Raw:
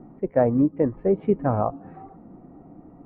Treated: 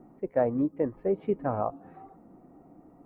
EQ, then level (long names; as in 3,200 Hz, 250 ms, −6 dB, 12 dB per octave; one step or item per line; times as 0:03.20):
bass and treble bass −6 dB, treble +12 dB
−5.0 dB